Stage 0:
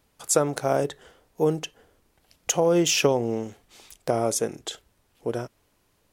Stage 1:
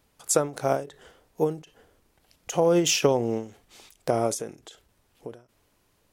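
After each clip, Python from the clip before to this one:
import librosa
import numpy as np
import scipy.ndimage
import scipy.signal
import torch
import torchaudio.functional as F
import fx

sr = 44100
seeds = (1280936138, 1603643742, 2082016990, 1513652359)

y = fx.end_taper(x, sr, db_per_s=150.0)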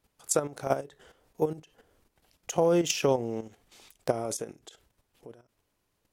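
y = fx.level_steps(x, sr, step_db=11)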